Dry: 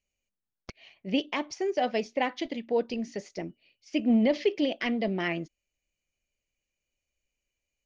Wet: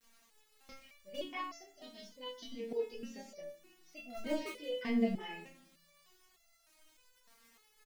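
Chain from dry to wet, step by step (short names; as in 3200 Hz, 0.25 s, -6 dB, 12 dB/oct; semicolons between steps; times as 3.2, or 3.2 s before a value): spectral gain 1.68–2.56, 280–2900 Hz -15 dB; in parallel at -11 dB: wrapped overs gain 16.5 dB; on the sum: crackle 510/s -40 dBFS; chorus voices 6, 0.77 Hz, delay 27 ms, depth 3.4 ms; on a send at -10 dB: doubler 31 ms -3 dB + reverb, pre-delay 4 ms; on the sum: stepped resonator 3.3 Hz 230–680 Hz; gain +5.5 dB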